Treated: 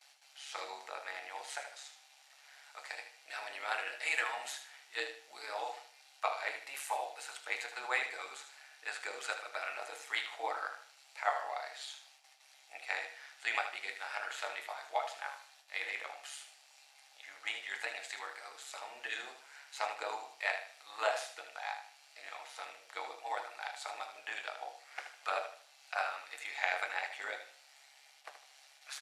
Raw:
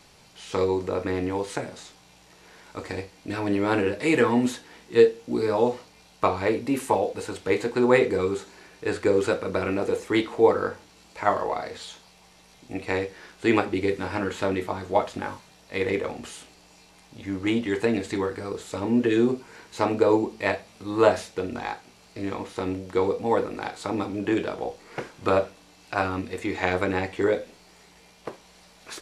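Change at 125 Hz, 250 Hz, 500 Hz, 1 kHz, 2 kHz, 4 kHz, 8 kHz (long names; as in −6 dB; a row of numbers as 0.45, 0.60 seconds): below −40 dB, −40.0 dB, −22.0 dB, −10.0 dB, −5.5 dB, −5.0 dB, −5.5 dB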